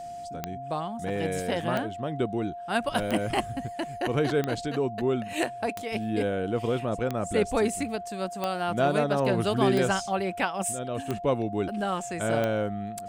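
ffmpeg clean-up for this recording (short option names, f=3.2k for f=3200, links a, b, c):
-af "adeclick=t=4,bandreject=f=700:w=30"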